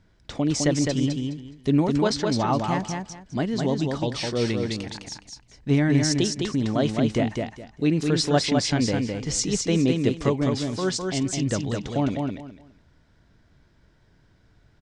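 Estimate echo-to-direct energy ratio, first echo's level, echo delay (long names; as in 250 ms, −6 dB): −4.0 dB, −4.0 dB, 208 ms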